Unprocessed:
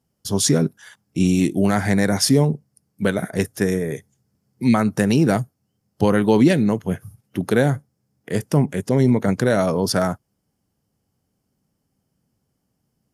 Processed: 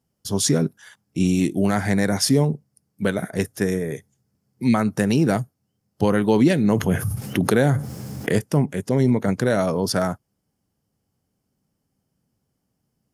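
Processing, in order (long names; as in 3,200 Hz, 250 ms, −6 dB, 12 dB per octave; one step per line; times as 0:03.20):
0:06.64–0:08.39: envelope flattener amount 70%
level −2 dB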